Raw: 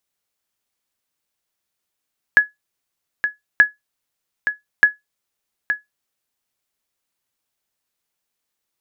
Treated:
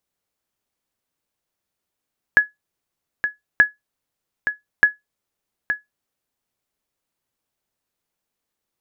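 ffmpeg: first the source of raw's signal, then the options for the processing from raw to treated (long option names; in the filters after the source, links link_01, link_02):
-f lavfi -i "aevalsrc='0.794*(sin(2*PI*1690*mod(t,1.23))*exp(-6.91*mod(t,1.23)/0.16)+0.355*sin(2*PI*1690*max(mod(t,1.23)-0.87,0))*exp(-6.91*max(mod(t,1.23)-0.87,0)/0.16))':duration=3.69:sample_rate=44100"
-af "tiltshelf=frequency=1100:gain=4"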